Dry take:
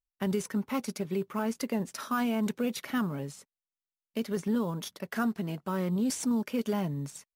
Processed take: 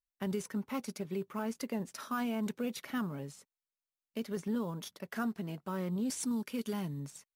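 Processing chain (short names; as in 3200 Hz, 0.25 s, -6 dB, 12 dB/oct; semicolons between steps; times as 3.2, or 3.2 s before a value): 6.17–7 fifteen-band EQ 630 Hz -7 dB, 4000 Hz +4 dB, 10000 Hz +7 dB; gain -5.5 dB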